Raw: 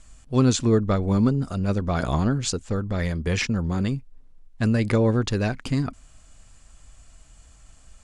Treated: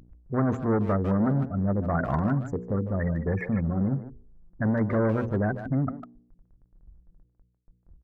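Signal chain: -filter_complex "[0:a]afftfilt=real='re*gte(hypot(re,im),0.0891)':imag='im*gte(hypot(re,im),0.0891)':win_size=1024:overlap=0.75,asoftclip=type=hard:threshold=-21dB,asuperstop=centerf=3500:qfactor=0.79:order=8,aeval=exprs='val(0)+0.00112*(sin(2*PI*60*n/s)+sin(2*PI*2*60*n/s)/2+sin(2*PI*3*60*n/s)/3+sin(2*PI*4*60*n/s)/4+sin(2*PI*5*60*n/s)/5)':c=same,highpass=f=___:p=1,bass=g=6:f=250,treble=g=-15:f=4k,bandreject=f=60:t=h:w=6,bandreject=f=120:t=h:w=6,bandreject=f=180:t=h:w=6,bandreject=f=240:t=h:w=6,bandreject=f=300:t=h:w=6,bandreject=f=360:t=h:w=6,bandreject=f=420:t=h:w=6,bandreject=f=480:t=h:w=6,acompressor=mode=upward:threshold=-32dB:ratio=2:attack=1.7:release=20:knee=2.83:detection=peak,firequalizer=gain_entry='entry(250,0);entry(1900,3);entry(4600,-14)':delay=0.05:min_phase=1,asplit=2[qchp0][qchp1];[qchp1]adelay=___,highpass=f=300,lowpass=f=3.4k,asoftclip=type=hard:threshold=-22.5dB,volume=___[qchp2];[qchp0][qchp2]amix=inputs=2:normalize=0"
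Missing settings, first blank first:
190, 150, -9dB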